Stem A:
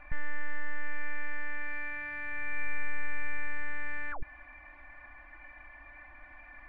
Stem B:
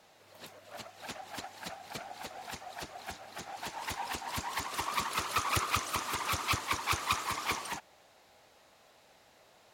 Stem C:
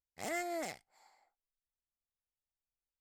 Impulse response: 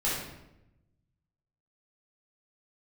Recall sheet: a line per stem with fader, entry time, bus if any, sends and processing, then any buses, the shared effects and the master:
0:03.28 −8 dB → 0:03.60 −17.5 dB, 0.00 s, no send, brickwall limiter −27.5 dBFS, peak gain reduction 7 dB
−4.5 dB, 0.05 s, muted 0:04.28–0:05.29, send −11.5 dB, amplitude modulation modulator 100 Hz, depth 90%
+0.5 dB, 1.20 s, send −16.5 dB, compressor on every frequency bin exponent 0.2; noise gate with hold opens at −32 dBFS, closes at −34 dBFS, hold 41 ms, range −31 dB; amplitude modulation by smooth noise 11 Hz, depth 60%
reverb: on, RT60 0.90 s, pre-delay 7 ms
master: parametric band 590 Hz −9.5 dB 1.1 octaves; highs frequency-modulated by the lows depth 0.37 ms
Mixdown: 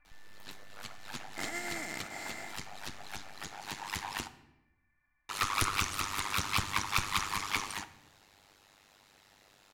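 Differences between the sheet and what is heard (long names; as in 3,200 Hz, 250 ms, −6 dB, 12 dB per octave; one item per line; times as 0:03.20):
stem A −8.0 dB → −16.0 dB
stem B −4.5 dB → +5.0 dB
reverb return −8.5 dB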